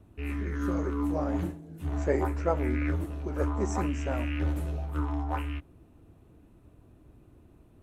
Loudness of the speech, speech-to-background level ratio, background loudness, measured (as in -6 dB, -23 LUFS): -35.0 LUFS, -2.5 dB, -32.5 LUFS